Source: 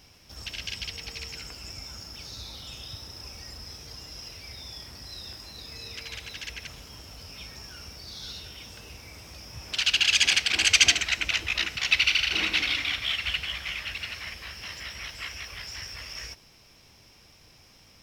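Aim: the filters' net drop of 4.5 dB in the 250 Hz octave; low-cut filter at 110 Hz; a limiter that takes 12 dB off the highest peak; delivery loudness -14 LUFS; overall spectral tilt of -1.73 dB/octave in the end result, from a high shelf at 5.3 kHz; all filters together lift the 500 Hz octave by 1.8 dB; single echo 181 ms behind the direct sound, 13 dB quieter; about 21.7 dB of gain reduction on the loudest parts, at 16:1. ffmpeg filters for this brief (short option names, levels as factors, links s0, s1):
-af "highpass=110,equalizer=f=250:t=o:g=-8,equalizer=f=500:t=o:g=4.5,highshelf=f=5300:g=4.5,acompressor=threshold=0.02:ratio=16,alimiter=level_in=2.11:limit=0.0631:level=0:latency=1,volume=0.473,aecho=1:1:181:0.224,volume=17.8"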